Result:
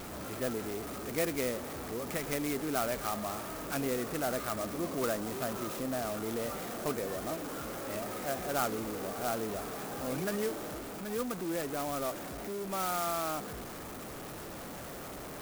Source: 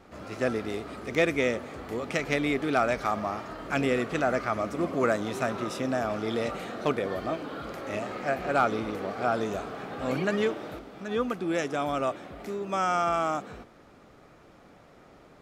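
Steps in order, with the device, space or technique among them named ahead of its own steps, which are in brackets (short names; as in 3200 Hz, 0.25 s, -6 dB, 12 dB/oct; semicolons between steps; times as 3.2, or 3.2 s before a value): early CD player with a faulty converter (zero-crossing step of -29 dBFS; clock jitter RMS 0.074 ms); gain -9 dB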